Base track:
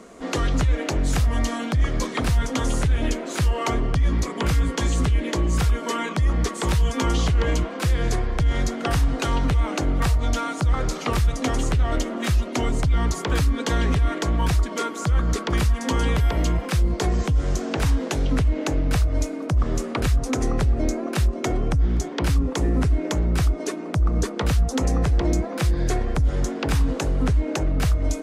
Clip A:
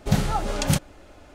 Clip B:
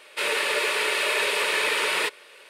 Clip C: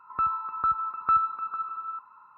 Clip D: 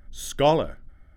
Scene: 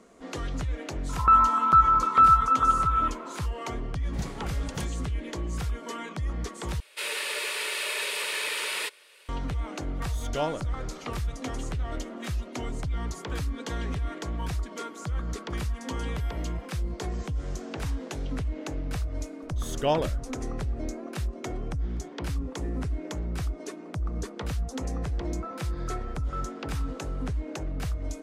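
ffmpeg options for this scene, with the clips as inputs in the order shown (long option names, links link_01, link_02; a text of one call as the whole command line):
ffmpeg -i bed.wav -i cue0.wav -i cue1.wav -i cue2.wav -i cue3.wav -filter_complex "[3:a]asplit=2[link_01][link_02];[4:a]asplit=2[link_03][link_04];[0:a]volume=-10.5dB[link_05];[link_01]alimiter=level_in=20.5dB:limit=-1dB:release=50:level=0:latency=1[link_06];[1:a]equalizer=frequency=13000:width=4.5:gain=-8[link_07];[2:a]highshelf=frequency=2700:gain=10[link_08];[link_04]bandreject=frequency=2100:width=12[link_09];[link_05]asplit=2[link_10][link_11];[link_10]atrim=end=6.804[link_12];[link_08]atrim=end=2.49,asetpts=PTS-STARTPTS,volume=-11dB[link_13];[link_11]atrim=start=9.286[link_14];[link_06]atrim=end=2.37,asetpts=PTS-STARTPTS,volume=-10dB,afade=type=in:duration=0.004:curve=hsin,afade=type=out:start_time=2.366:duration=0.004:curve=hsin,adelay=1090[link_15];[link_07]atrim=end=1.34,asetpts=PTS-STARTPTS,volume=-15dB,afade=type=in:duration=0.004:curve=hsin,afade=type=out:start_time=1.336:duration=0.004:curve=hsin,adelay=4070[link_16];[link_03]atrim=end=1.16,asetpts=PTS-STARTPTS,volume=-10dB,afade=type=in:duration=0.004:curve=hsin,afade=type=out:start_time=1.156:duration=0.004:curve=hsin,adelay=9950[link_17];[link_09]atrim=end=1.16,asetpts=PTS-STARTPTS,volume=-5.5dB,afade=type=in:duration=0.004:curve=hsin,afade=type=out:start_time=1.156:duration=0.004:curve=hsin,adelay=19430[link_18];[link_02]atrim=end=2.37,asetpts=PTS-STARTPTS,volume=-15.5dB,afade=type=in:duration=0.004:curve=hsin,afade=type=out:start_time=2.366:duration=0.004:curve=hsin,adelay=25240[link_19];[link_12][link_13]acrossfade=duration=0.004:curve1=hsin:curve2=hsin[link_20];[link_20][link_14]acrossfade=duration=0.004:curve1=hsin:curve2=hsin[link_21];[link_21][link_15][link_16][link_17][link_18][link_19]amix=inputs=6:normalize=0" out.wav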